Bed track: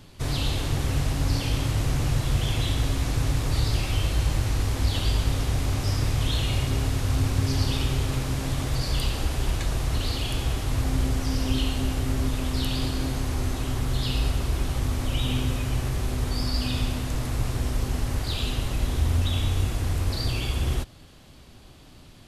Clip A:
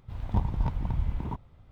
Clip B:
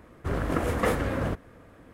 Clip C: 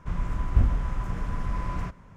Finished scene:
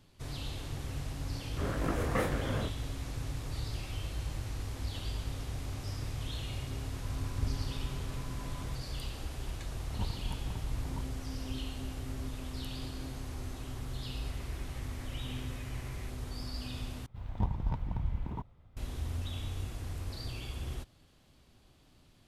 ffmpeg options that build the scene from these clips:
-filter_complex "[3:a]asplit=2[s0][s1];[1:a]asplit=2[s2][s3];[0:a]volume=0.211[s4];[2:a]flanger=delay=17.5:depth=7.6:speed=1.8[s5];[s1]highpass=f=2100:t=q:w=2.7[s6];[s4]asplit=2[s7][s8];[s7]atrim=end=17.064[s9];[s3]atrim=end=1.71,asetpts=PTS-STARTPTS,volume=0.562[s10];[s8]atrim=start=18.766[s11];[s5]atrim=end=1.93,asetpts=PTS-STARTPTS,volume=0.668,afade=t=in:d=0.004:c=hsin,afade=t=out:st=1.926:d=0.004:c=hsin,adelay=1320[s12];[s0]atrim=end=2.16,asetpts=PTS-STARTPTS,volume=0.211,afade=t=in:d=0.004:c=hsin,afade=t=out:st=2.156:d=0.004:c=hsin,adelay=6860[s13];[s2]atrim=end=1.71,asetpts=PTS-STARTPTS,volume=0.316,afade=t=in:d=0.004:c=hsin,afade=t=out:st=1.706:d=0.004:c=hsin,adelay=9650[s14];[s6]atrim=end=2.16,asetpts=PTS-STARTPTS,volume=0.211,afade=t=in:d=0.004:c=hsin,afade=t=out:st=2.156:d=0.004:c=hsin,adelay=14200[s15];[s9][s10]acrossfade=d=0.004:c1=hsin:c2=hsin[s16];[s16][s11]acrossfade=d=0.004:c1=hsin:c2=hsin[s17];[s17][s12][s13][s14][s15]amix=inputs=5:normalize=0"

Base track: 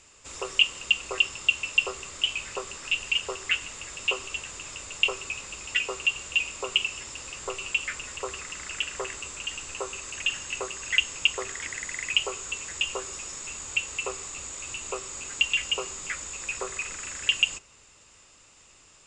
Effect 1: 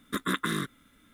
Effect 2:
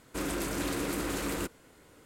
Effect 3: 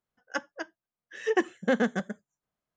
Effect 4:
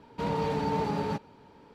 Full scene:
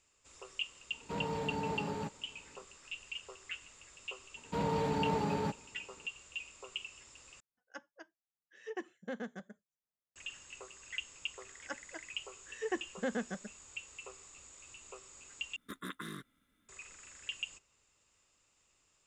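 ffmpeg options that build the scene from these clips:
-filter_complex "[4:a]asplit=2[s0][s1];[3:a]asplit=2[s2][s3];[0:a]volume=0.133[s4];[s1]agate=range=0.0224:threshold=0.00282:ratio=3:release=100:detection=peak[s5];[s4]asplit=3[s6][s7][s8];[s6]atrim=end=7.404[s9];[s2]atrim=end=2.76,asetpts=PTS-STARTPTS,volume=0.15[s10];[s7]atrim=start=10.156:end=15.564[s11];[1:a]atrim=end=1.13,asetpts=PTS-STARTPTS,volume=0.188[s12];[s8]atrim=start=16.686[s13];[s0]atrim=end=1.74,asetpts=PTS-STARTPTS,volume=0.398,afade=t=in:d=0.004:c=hsin,afade=t=out:st=1.736:d=0.004:c=hsin,adelay=910[s14];[s5]atrim=end=1.74,asetpts=PTS-STARTPTS,volume=0.668,afade=t=in:d=0.004:c=hsin,afade=t=out:st=1.736:d=0.004:c=hsin,adelay=4340[s15];[s3]atrim=end=2.76,asetpts=PTS-STARTPTS,volume=0.282,afade=t=in:d=0.004:c=hsin,afade=t=out:st=2.756:d=0.004:c=hsin,adelay=11350[s16];[s9][s10]acrossfade=d=0.004:c1=hsin:c2=hsin[s17];[s17][s11]acrossfade=d=0.004:c1=hsin:c2=hsin[s18];[s18][s12]acrossfade=d=0.004:c1=hsin:c2=hsin[s19];[s19][s13]acrossfade=d=0.004:c1=hsin:c2=hsin[s20];[s20][s14][s15][s16]amix=inputs=4:normalize=0"

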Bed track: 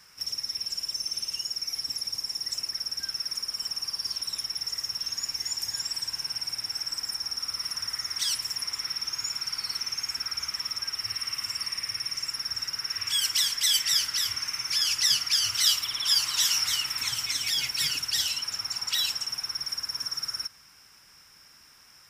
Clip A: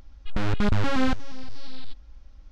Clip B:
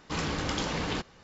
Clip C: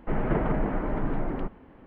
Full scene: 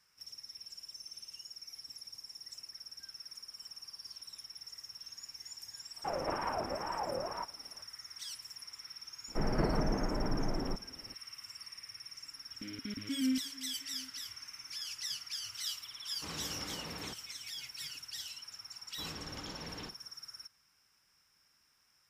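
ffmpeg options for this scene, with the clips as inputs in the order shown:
-filter_complex "[3:a]asplit=2[s0][s1];[2:a]asplit=2[s2][s3];[0:a]volume=0.15[s4];[s0]aeval=exprs='val(0)*sin(2*PI*740*n/s+740*0.3/2.1*sin(2*PI*2.1*n/s))':c=same[s5];[1:a]asplit=3[s6][s7][s8];[s6]bandpass=f=270:t=q:w=8,volume=1[s9];[s7]bandpass=f=2290:t=q:w=8,volume=0.501[s10];[s8]bandpass=f=3010:t=q:w=8,volume=0.355[s11];[s9][s10][s11]amix=inputs=3:normalize=0[s12];[s2]highpass=57[s13];[s3]asplit=2[s14][s15];[s15]adelay=49,volume=0.282[s16];[s14][s16]amix=inputs=2:normalize=0[s17];[s5]atrim=end=1.86,asetpts=PTS-STARTPTS,volume=0.376,afade=t=in:d=0.004:c=hsin,afade=t=out:st=1.856:d=0.004:c=hsin,adelay=5970[s18];[s1]atrim=end=1.86,asetpts=PTS-STARTPTS,volume=0.531,afade=t=in:d=0.004:c=hsin,afade=t=out:st=1.856:d=0.004:c=hsin,adelay=9280[s19];[s12]atrim=end=2.51,asetpts=PTS-STARTPTS,volume=0.631,afade=t=in:d=0.004:c=hsin,afade=t=out:st=2.506:d=0.004:c=hsin,adelay=12250[s20];[s13]atrim=end=1.23,asetpts=PTS-STARTPTS,volume=0.211,afade=t=in:d=0.004:c=hsin,afade=t=out:st=1.226:d=0.004:c=hsin,adelay=16120[s21];[s17]atrim=end=1.23,asetpts=PTS-STARTPTS,volume=0.178,afade=t=in:d=0.004:c=hsin,afade=t=out:st=1.226:d=0.004:c=hsin,adelay=18880[s22];[s4][s18][s19][s20][s21][s22]amix=inputs=6:normalize=0"

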